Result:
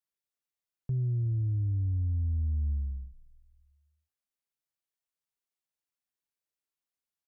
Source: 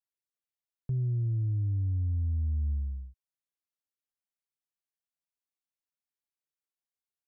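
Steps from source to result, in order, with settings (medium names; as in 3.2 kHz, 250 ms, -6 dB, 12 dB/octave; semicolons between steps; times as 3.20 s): frequency-shifting echo 314 ms, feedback 46%, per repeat -47 Hz, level -23.5 dB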